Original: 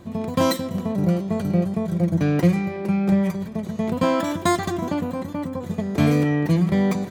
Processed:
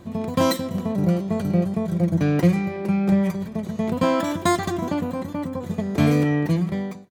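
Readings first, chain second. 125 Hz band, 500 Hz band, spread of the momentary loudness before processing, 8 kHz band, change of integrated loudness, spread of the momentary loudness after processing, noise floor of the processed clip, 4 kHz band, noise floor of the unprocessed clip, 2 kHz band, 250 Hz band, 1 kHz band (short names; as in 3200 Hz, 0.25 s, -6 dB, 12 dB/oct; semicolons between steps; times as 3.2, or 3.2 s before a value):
-0.5 dB, -0.5 dB, 9 LU, 0.0 dB, -0.5 dB, 9 LU, -35 dBFS, 0.0 dB, -34 dBFS, -0.5 dB, -0.5 dB, 0.0 dB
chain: ending faded out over 0.72 s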